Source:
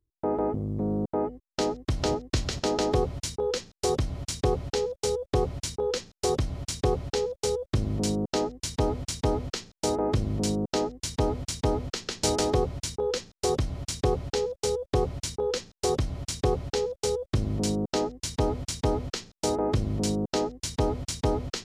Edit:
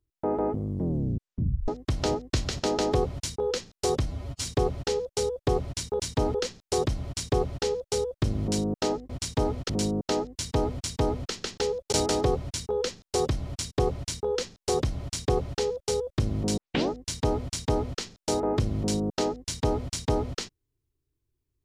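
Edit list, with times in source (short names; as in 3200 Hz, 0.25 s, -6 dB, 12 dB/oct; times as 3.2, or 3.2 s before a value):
0.68 tape stop 1.00 s
4.06–4.33 stretch 1.5×
7.11–7.46 copy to 12.22
8.61–8.96 move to 5.86
9.56–10.34 cut
14.02–14.88 cut
17.73 tape start 0.32 s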